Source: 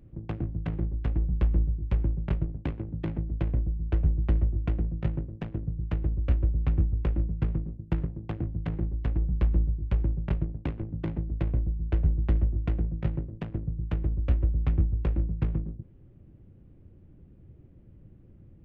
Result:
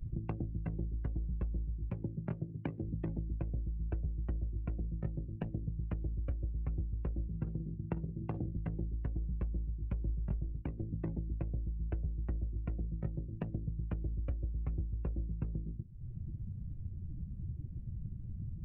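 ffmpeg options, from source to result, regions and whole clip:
-filter_complex "[0:a]asettb=1/sr,asplit=3[a][b][c];[a]atrim=end=1.904[d];[b]atrim=start=1.9:end=2.82,asetpts=PTS-STARTPTS,afade=t=in:d=0.004:c=qsin,afade=t=out:st=0.916:d=0.004:c=qsin,highpass=f=97:w=0.5412,highpass=f=97:w=1.3066,bandreject=f=220.7:t=h:w=4,bandreject=f=441.4:t=h:w=4,bandreject=f=662.1:t=h:w=4,bandreject=f=882.8:t=h:w=4,bandreject=f=1.1035k:t=h:w=4,bandreject=f=1.3242k:t=h:w=4,bandreject=f=1.5449k:t=h:w=4,bandreject=f=1.7656k:t=h:w=4,bandreject=f=1.9863k:t=h:w=4[e];[c]atrim=start=2.816[f];[d][e]acrossfade=d=0.004:c1=hsin:c2=qsin[g];[g][f]acrossfade=d=0.004:c1=qsin:c2=hsin,asettb=1/sr,asplit=3[h][i][j];[h]atrim=end=7.284[k];[i]atrim=start=7.28:end=8.57,asetpts=PTS-STARTPTS,afade=t=in:d=0.004:c=qsin,afade=t=out:st=1.286:d=0.004:c=qsin,highpass=66,asplit=2[l][m];[m]adelay=49,volume=-7.5dB[n];[l][n]amix=inputs=2:normalize=0,atrim=end_sample=56889[o];[j]atrim=start=8.566[p];[k][o]acrossfade=d=0.004:c1=hsin:c2=qsin[q];[q][p]acrossfade=d=0.004:c1=qsin:c2=hsin,asettb=1/sr,asplit=3[r][s][t];[r]atrim=end=10.074[u];[s]atrim=start=10.07:end=10.62,asetpts=PTS-STARTPTS,afade=t=in:d=0.004:c=qsin,afade=t=out:st=0.546:d=0.004:c=qsin,lowshelf=f=130:g=7.5,asplit=2[v][w];[w]adelay=21,volume=-8.5dB[x];[v][x]amix=inputs=2:normalize=0,atrim=end_sample=24255[y];[t]atrim=start=10.616[z];[u][y]acrossfade=d=0.004:c1=hsin:c2=qsin[aa];[aa][z]acrossfade=d=0.004:c1=qsin:c2=hsin,afftdn=nr=21:nf=-42,bass=f=250:g=2,treble=f=4k:g=4,acompressor=threshold=-49dB:ratio=6,volume=12.5dB"

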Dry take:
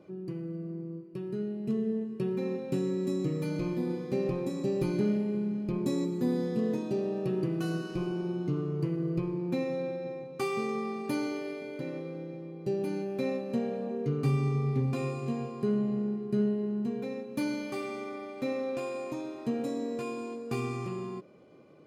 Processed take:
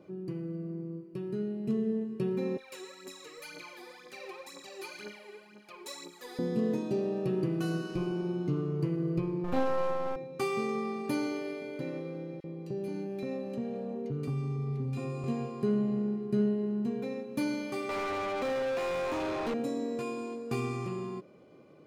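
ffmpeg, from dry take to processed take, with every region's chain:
-filter_complex "[0:a]asettb=1/sr,asplit=3[a][b][c];[a]atrim=end=2.574[d];[b]atrim=start=2.57:end=6.39,asetpts=PTS-STARTPTS,afade=t=in:d=0.004:c=qsin,afade=t=out:st=3.816:d=0.004:c=qsin,highpass=1.2k,aphaser=in_gain=1:out_gain=1:delay=2.8:decay=0.69:speed=2:type=triangular[e];[c]atrim=start=6.386[f];[d][e]acrossfade=d=0.004:c1=hsin:c2=qsin[g];[g][f]acrossfade=d=0.004:c1=qsin:c2=hsin,asettb=1/sr,asplit=3[h][i][j];[h]atrim=end=9.444[k];[i]atrim=start=9.44:end=10.16,asetpts=PTS-STARTPTS,afade=t=in:d=0.004:c=qsin,afade=t=out:st=0.716:d=0.004:c=qsin,equalizer=f=860:w=1.6:g=15,aeval=exprs='max(val(0),0)':c=same,asplit=2[l][m];[m]adelay=38,volume=-6dB[n];[l][n]amix=inputs=2:normalize=0,atrim=end_sample=31752[o];[j]atrim=start=10.156[p];[k][o]acrossfade=d=0.004:c1=hsin:c2=qsin[q];[q][p]acrossfade=d=0.004:c1=qsin:c2=hsin,asettb=1/sr,asplit=3[r][s][t];[r]atrim=end=12.404[u];[s]atrim=start=12.4:end=15.24,asetpts=PTS-STARTPTS,afade=t=in:d=0.004:c=qsin,afade=t=out:st=2.836:d=0.004:c=qsin,bass=f=250:g=3,treble=f=4k:g=-1,acompressor=threshold=-34dB:ratio=2.5:attack=3.2:release=140:knee=1:detection=peak,acrossover=split=1600[v][w];[v]adelay=40[x];[x][w]amix=inputs=2:normalize=0,atrim=end_sample=125244[y];[t]atrim=start=15.236[z];[u][y]acrossfade=d=0.004:c1=hsin:c2=qsin[aa];[aa][z]acrossfade=d=0.004:c1=qsin:c2=hsin,asettb=1/sr,asplit=3[ab][ac][ad];[ab]atrim=end=17.894[ae];[ac]atrim=start=17.89:end=19.54,asetpts=PTS-STARTPTS,afade=t=in:d=0.004:c=qsin,afade=t=out:st=1.646:d=0.004:c=qsin,highpass=f=470:p=1,asplit=2[af][ag];[ag]highpass=f=720:p=1,volume=34dB,asoftclip=type=tanh:threshold=-25dB[ah];[af][ah]amix=inputs=2:normalize=0,lowpass=f=1.4k:p=1,volume=-6dB[ai];[ad]atrim=start=19.536[aj];[ae][ai]acrossfade=d=0.004:c1=hsin:c2=qsin[ak];[ak][aj]acrossfade=d=0.004:c1=qsin:c2=hsin"

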